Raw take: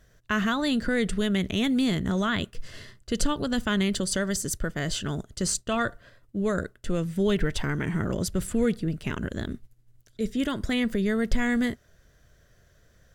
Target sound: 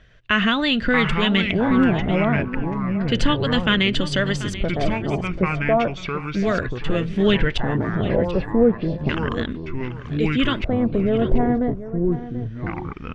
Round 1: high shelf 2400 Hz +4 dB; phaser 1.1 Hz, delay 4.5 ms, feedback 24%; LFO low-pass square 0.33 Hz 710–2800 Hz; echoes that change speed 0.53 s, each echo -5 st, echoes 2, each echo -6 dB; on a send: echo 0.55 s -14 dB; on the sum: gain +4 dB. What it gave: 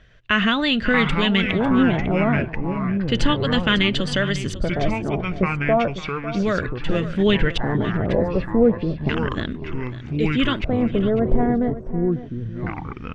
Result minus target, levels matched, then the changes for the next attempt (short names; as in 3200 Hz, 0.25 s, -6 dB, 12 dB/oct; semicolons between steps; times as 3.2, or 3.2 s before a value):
echo 0.187 s early
change: echo 0.737 s -14 dB